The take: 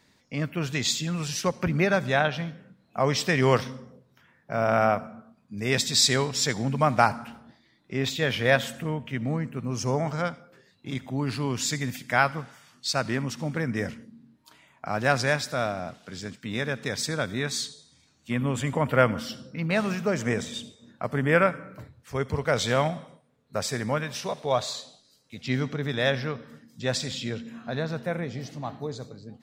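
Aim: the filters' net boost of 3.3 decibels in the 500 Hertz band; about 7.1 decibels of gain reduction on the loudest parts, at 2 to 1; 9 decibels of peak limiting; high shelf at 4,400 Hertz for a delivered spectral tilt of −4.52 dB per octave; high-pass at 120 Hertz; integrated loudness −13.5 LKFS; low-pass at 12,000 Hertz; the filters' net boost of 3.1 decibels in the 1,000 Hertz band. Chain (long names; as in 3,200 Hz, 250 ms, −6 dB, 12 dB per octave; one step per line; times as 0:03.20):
high-pass filter 120 Hz
low-pass filter 12,000 Hz
parametric band 500 Hz +3 dB
parametric band 1,000 Hz +3.5 dB
high-shelf EQ 4,400 Hz −3.5 dB
downward compressor 2 to 1, threshold −25 dBFS
level +18 dB
brickwall limiter −0.5 dBFS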